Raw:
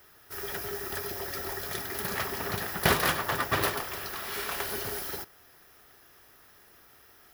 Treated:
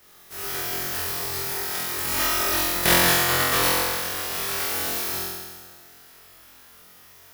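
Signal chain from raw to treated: spectral contrast lowered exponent 0.52; 2.07–2.65 comb 3.2 ms, depth 95%; on a send: flutter echo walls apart 3.9 m, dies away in 1.5 s

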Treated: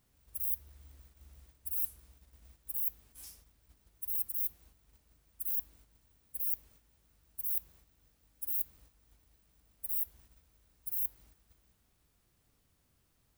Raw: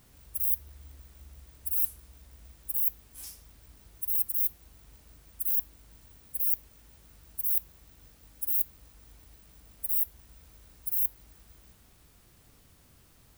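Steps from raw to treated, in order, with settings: gate -52 dBFS, range -7 dB; gain -6.5 dB

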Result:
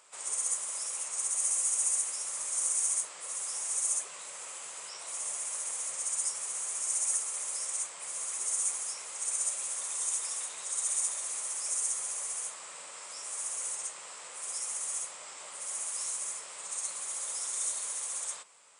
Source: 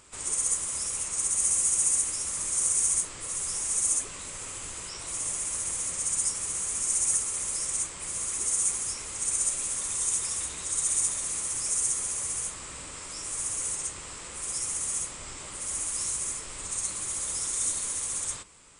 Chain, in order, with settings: elliptic high-pass 160 Hz, stop band 60 dB; resonant low shelf 420 Hz -12.5 dB, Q 1.5; gain -3.5 dB

